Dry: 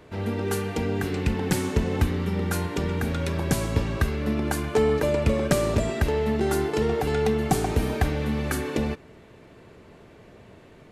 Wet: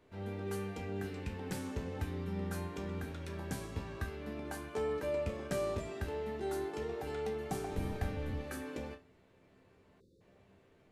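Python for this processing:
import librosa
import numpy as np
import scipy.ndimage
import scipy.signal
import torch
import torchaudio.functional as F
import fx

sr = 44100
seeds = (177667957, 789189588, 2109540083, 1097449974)

y = fx.octave_divider(x, sr, octaves=1, level_db=2.0, at=(7.7, 8.41))
y = fx.resonator_bank(y, sr, root=36, chord='sus4', decay_s=0.26)
y = fx.spec_erase(y, sr, start_s=10.0, length_s=0.21, low_hz=560.0, high_hz=3500.0)
y = y * librosa.db_to_amplitude(-6.0)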